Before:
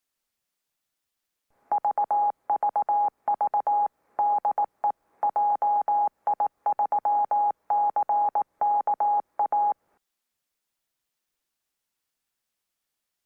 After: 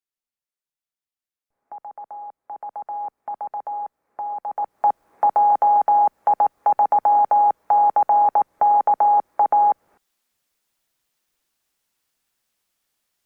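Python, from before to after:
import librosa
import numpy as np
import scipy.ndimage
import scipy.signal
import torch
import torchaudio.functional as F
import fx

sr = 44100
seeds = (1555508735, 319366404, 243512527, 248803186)

y = fx.gain(x, sr, db=fx.line((2.26, -12.0), (3.05, -5.0), (4.44, -5.0), (4.86, 7.5)))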